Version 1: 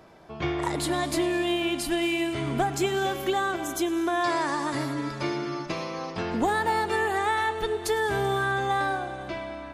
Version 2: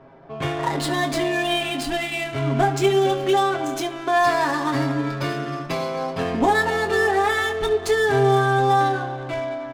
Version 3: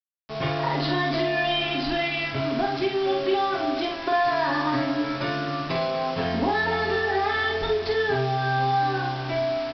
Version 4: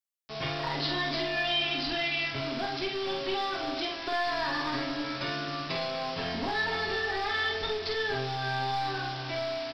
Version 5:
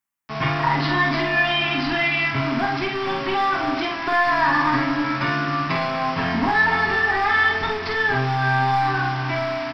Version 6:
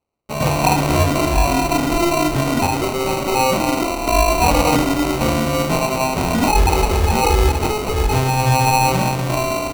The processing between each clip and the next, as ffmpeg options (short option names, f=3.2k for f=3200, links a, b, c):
-filter_complex "[0:a]aecho=1:1:7.4:0.9,adynamicsmooth=sensitivity=7.5:basefreq=1.7k,asplit=2[a][b];[b]aecho=0:1:23|70:0.376|0.15[c];[a][c]amix=inputs=2:normalize=0,volume=2.5dB"
-filter_complex "[0:a]acompressor=threshold=-20dB:ratio=8,aresample=11025,acrusher=bits=5:mix=0:aa=0.000001,aresample=44100,asplit=2[a][b];[b]adelay=47,volume=-3.5dB[c];[a][c]amix=inputs=2:normalize=0,volume=-1.5dB"
-filter_complex "[0:a]highshelf=f=2.5k:g=10.5,acrossover=split=1400[a][b];[a]aeval=exprs='clip(val(0),-1,0.0501)':c=same[c];[c][b]amix=inputs=2:normalize=0,volume=-7.5dB"
-af "equalizer=f=125:t=o:w=1:g=6,equalizer=f=250:t=o:w=1:g=7,equalizer=f=500:t=o:w=1:g=-7,equalizer=f=1k:t=o:w=1:g=9,equalizer=f=2k:t=o:w=1:g=6,equalizer=f=4k:t=o:w=1:g=-8,volume=6.5dB"
-af "acrusher=samples=26:mix=1:aa=0.000001,volume=4.5dB"